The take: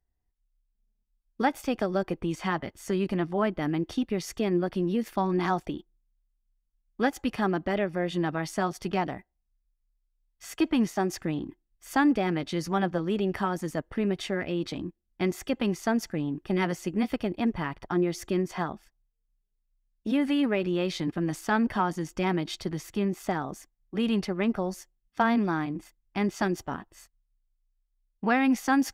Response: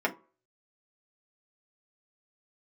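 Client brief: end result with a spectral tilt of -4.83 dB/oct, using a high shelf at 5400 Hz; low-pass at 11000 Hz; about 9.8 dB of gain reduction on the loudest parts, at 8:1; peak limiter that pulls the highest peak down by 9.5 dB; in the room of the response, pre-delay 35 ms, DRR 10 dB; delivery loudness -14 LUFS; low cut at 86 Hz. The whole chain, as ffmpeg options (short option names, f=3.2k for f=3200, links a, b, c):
-filter_complex "[0:a]highpass=86,lowpass=11k,highshelf=f=5.4k:g=7,acompressor=threshold=-29dB:ratio=8,alimiter=level_in=1.5dB:limit=-24dB:level=0:latency=1,volume=-1.5dB,asplit=2[a][b];[1:a]atrim=start_sample=2205,adelay=35[c];[b][c]afir=irnorm=-1:irlink=0,volume=-20.5dB[d];[a][d]amix=inputs=2:normalize=0,volume=21.5dB"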